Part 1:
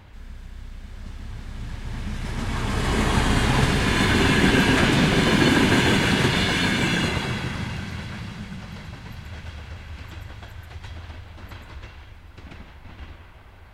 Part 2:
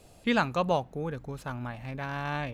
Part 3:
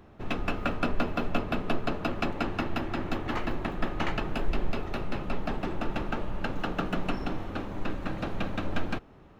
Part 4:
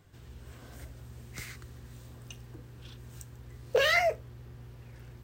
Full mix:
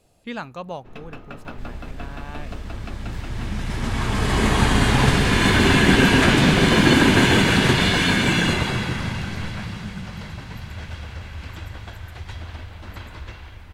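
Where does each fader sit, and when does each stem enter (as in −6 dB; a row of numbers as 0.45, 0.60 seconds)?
+3.0, −6.0, −9.0, −11.5 decibels; 1.45, 0.00, 0.65, 1.75 seconds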